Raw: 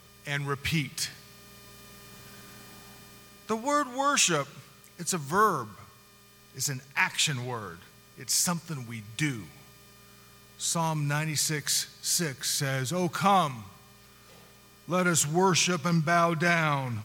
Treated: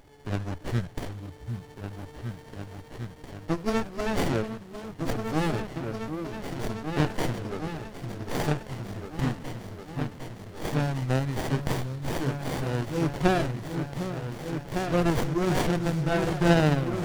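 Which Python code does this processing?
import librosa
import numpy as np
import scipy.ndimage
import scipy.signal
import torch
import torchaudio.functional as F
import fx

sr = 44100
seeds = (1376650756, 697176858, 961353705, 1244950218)

y = fx.pitch_glide(x, sr, semitones=-6.0, runs='ending unshifted')
y = fx.low_shelf(y, sr, hz=160.0, db=-6.5)
y = fx.echo_opening(y, sr, ms=754, hz=400, octaves=2, feedback_pct=70, wet_db=-3)
y = fx.running_max(y, sr, window=33)
y = y * librosa.db_to_amplitude(3.0)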